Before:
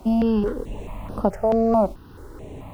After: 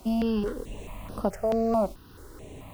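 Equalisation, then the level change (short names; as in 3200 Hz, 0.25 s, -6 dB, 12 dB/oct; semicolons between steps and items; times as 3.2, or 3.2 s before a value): high shelf 2300 Hz +10.5 dB; notch 870 Hz, Q 14; -6.5 dB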